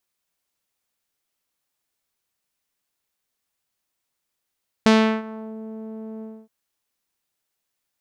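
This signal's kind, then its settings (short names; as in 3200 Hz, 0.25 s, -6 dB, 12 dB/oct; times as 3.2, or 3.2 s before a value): synth note saw A3 12 dB/oct, low-pass 510 Hz, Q 1, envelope 3.5 oct, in 0.69 s, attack 1.1 ms, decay 0.36 s, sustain -21.5 dB, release 0.26 s, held 1.36 s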